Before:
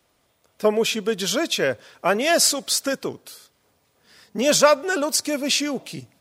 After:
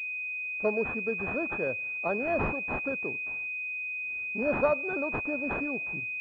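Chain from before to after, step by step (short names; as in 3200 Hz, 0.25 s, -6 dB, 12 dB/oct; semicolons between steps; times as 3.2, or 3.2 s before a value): pulse-width modulation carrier 2500 Hz; gain -9 dB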